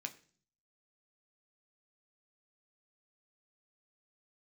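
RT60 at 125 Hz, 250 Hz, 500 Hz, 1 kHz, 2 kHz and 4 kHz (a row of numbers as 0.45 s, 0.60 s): 0.80 s, 0.70 s, 0.50 s, 0.40 s, 0.40 s, 0.50 s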